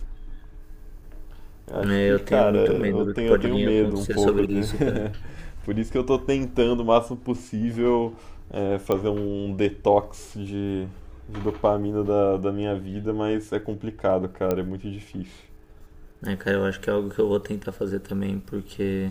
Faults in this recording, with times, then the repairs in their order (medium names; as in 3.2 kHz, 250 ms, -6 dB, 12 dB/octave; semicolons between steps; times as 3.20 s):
8.92 s: pop -12 dBFS
14.51 s: pop -12 dBFS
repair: de-click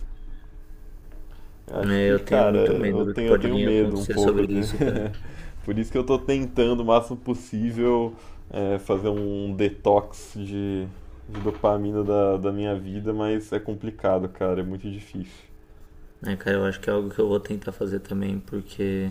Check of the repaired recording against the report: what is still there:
nothing left